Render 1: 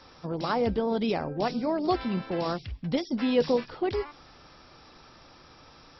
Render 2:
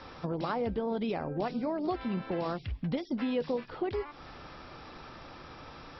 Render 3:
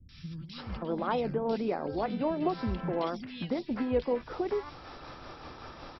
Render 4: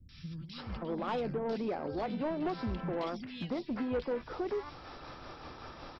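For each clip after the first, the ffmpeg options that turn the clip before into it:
-af "acompressor=threshold=-39dB:ratio=3,lowpass=3.4k,volume=6dB"
-filter_complex "[0:a]acrossover=split=180|2300[a][b][c];[c]adelay=90[d];[b]adelay=580[e];[a][e][d]amix=inputs=3:normalize=0,tremolo=f=5.3:d=0.35,volume=4dB"
-af "asoftclip=type=tanh:threshold=-26dB,volume=-1.5dB"

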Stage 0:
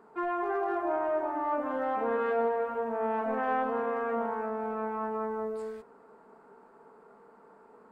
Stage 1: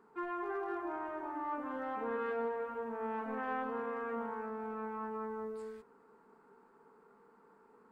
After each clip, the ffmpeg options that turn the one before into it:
-af "equalizer=f=640:t=o:w=0.45:g=-11,volume=-5.5dB"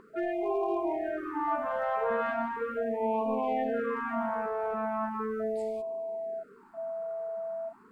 -af "aeval=exprs='val(0)+0.00891*sin(2*PI*660*n/s)':c=same,afftfilt=real='re*(1-between(b*sr/1024,290*pow(1600/290,0.5+0.5*sin(2*PI*0.38*pts/sr))/1.41,290*pow(1600/290,0.5+0.5*sin(2*PI*0.38*pts/sr))*1.41))':imag='im*(1-between(b*sr/1024,290*pow(1600/290,0.5+0.5*sin(2*PI*0.38*pts/sr))/1.41,290*pow(1600/290,0.5+0.5*sin(2*PI*0.38*pts/sr))*1.41))':win_size=1024:overlap=0.75,volume=8.5dB"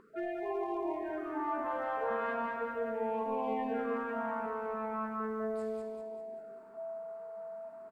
-af "aecho=1:1:196|392|588|784|980|1176:0.596|0.268|0.121|0.0543|0.0244|0.011,volume=-5.5dB"

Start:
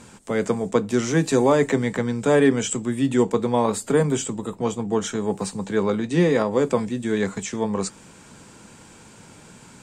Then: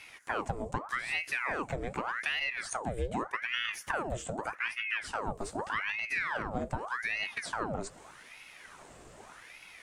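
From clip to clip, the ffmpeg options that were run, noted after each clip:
-af "equalizer=f=5.7k:t=o:w=2.5:g=-5.5,acompressor=threshold=-26dB:ratio=10,aeval=exprs='val(0)*sin(2*PI*1300*n/s+1300*0.85/0.83*sin(2*PI*0.83*n/s))':c=same,volume=-1.5dB"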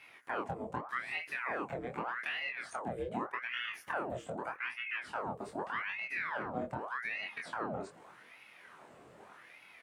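-filter_complex "[0:a]highpass=140,equalizer=f=7.1k:t=o:w=1.6:g=-13.5,asplit=2[a][b];[b]adelay=24,volume=-3dB[c];[a][c]amix=inputs=2:normalize=0,volume=-4dB"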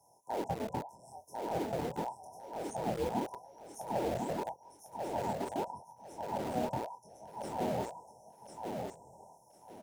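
-filter_complex "[0:a]afftfilt=real='re*(1-between(b*sr/4096,1000,5200))':imag='im*(1-between(b*sr/4096,1000,5200))':win_size=4096:overlap=0.75,acrossover=split=200|450|2100[a][b][c][d];[b]acrusher=bits=7:mix=0:aa=0.000001[e];[a][e][c][d]amix=inputs=4:normalize=0,aecho=1:1:1048|2096|3144:0.631|0.151|0.0363,volume=3.5dB"

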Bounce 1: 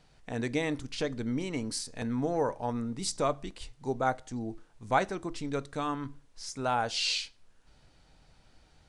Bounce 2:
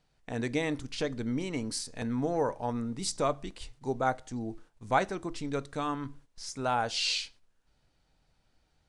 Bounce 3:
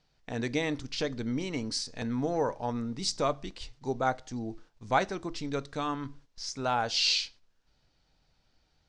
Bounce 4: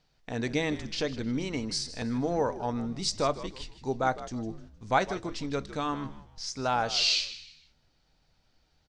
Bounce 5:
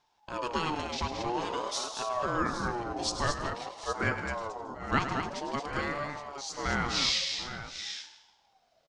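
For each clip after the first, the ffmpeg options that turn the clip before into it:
-af "agate=range=-10dB:threshold=-52dB:ratio=16:detection=peak"
-af "lowpass=f=5.4k:t=q:w=1.7"
-filter_complex "[0:a]asplit=4[a][b][c][d];[b]adelay=155,afreqshift=-81,volume=-14.5dB[e];[c]adelay=310,afreqshift=-162,volume=-24.1dB[f];[d]adelay=465,afreqshift=-243,volume=-33.8dB[g];[a][e][f][g]amix=inputs=4:normalize=0,volume=1dB"
-af "aecho=1:1:104|224|735|772|815:0.299|0.473|0.112|0.112|0.266,aeval=exprs='val(0)*sin(2*PI*710*n/s+710*0.25/0.49*sin(2*PI*0.49*n/s))':c=same"

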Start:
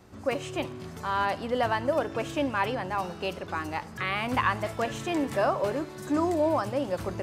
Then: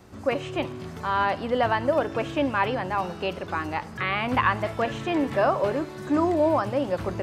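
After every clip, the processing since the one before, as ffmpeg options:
-filter_complex "[0:a]acrossover=split=4200[a][b];[b]acompressor=threshold=-58dB:ratio=4:attack=1:release=60[c];[a][c]amix=inputs=2:normalize=0,volume=3.5dB"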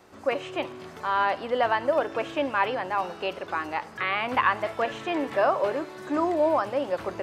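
-af "bass=f=250:g=-14,treble=f=4k:g=-3"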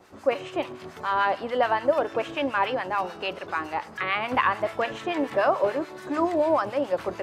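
-filter_complex "[0:a]acrossover=split=1000[a][b];[a]aeval=exprs='val(0)*(1-0.7/2+0.7/2*cos(2*PI*6.9*n/s))':c=same[c];[b]aeval=exprs='val(0)*(1-0.7/2-0.7/2*cos(2*PI*6.9*n/s))':c=same[d];[c][d]amix=inputs=2:normalize=0,volume=4dB"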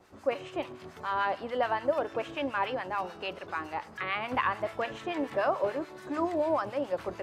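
-af "lowshelf=f=88:g=7,volume=-6dB"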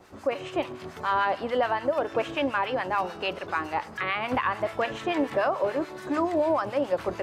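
-af "alimiter=limit=-22dB:level=0:latency=1:release=186,volume=6.5dB"

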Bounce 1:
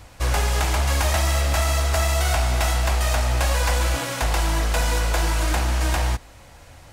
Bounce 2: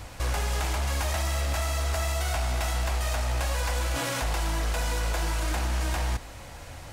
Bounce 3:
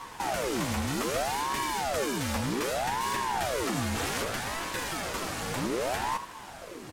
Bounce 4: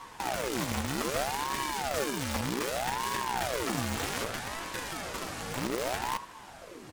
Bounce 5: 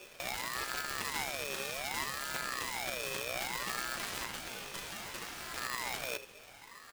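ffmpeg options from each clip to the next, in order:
-af "alimiter=limit=-24dB:level=0:latency=1:release=18,volume=3.5dB"
-af "aecho=1:1:10|80:0.631|0.237,aeval=exprs='val(0)*sin(2*PI*590*n/s+590*0.75/0.64*sin(2*PI*0.64*n/s))':c=same"
-filter_complex "[0:a]highshelf=f=12k:g=-3,asplit=2[a][b];[b]acrusher=bits=3:mix=0:aa=0.000001,volume=-6dB[c];[a][c]amix=inputs=2:normalize=0,volume=-4dB"
-af "aeval=exprs='val(0)*sgn(sin(2*PI*1500*n/s))':c=same,volume=-6dB"

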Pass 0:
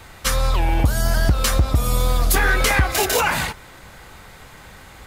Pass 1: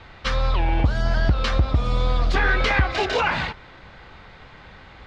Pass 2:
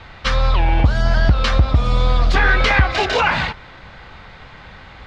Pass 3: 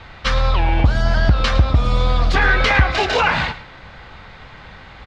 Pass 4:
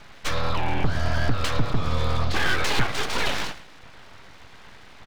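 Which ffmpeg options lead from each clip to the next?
-af "lowpass=f=4.3k:w=0.5412,lowpass=f=4.3k:w=1.3066,volume=-2dB"
-af "equalizer=f=360:w=1.5:g=-3.5,volume=5.5dB"
-af "aecho=1:1:109:0.188"
-af "aeval=exprs='abs(val(0))':c=same,volume=-5.5dB"

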